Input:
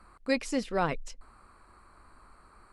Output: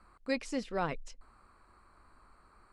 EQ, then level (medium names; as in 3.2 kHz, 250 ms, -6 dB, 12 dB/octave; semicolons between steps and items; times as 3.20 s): low-pass 8.8 kHz 12 dB/octave; -5.0 dB